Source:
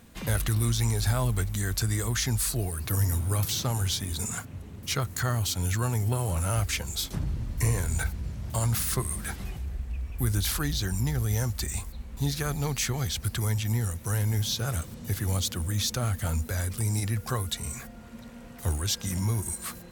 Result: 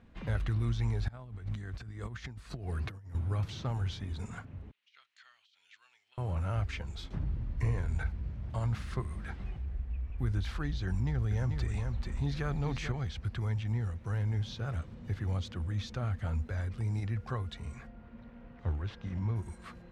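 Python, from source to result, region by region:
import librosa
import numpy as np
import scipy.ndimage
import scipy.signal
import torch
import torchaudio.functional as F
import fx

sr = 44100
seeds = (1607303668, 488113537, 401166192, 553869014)

y = fx.chain(x, sr, fx.over_compress(threshold_db=-32.0, ratio=-0.5),
    fx.highpass(hz=64.0, slope=12), at=(1.08, 3.15))
y = fx.chain(y, sr, fx.ladder_bandpass(hz=3700.0, resonance_pct=35),
    fx.over_compress(threshold_db=-47.0, ratio=-0.5), at=(4.71, 6.18))
y = fx.chain(y, sr, fx.echo_single(ms=438, db=-8.0),
    fx.env_flatten(amount_pct=50), at=(10.87, 12.92))
y = fx.chain(y, sr, fx.self_delay(depth_ms=0.079),
    fx.air_absorb(metres=120.0), at=(17.9, 19.36))
y = scipy.signal.sosfilt(scipy.signal.butter(2, 2600.0, 'lowpass', fs=sr, output='sos'), y)
y = fx.low_shelf(y, sr, hz=69.0, db=7.0)
y = y * librosa.db_to_amplitude(-7.0)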